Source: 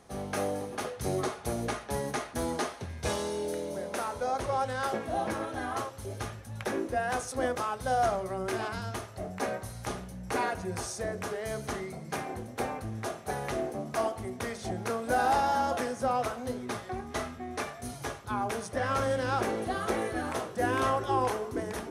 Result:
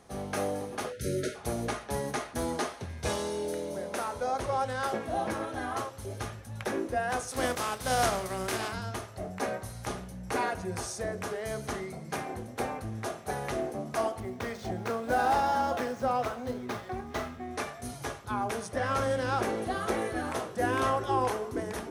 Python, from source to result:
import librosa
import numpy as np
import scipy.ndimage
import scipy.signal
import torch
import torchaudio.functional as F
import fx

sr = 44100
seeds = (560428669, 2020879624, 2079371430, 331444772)

y = fx.spec_erase(x, sr, start_s=0.92, length_s=0.43, low_hz=630.0, high_hz=1300.0)
y = fx.spec_flatten(y, sr, power=0.66, at=(7.31, 8.71), fade=0.02)
y = fx.median_filter(y, sr, points=5, at=(14.2, 17.49))